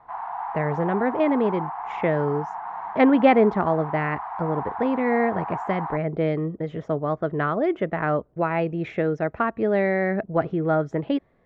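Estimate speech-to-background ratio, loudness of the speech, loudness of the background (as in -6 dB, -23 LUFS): 8.5 dB, -24.0 LUFS, -32.5 LUFS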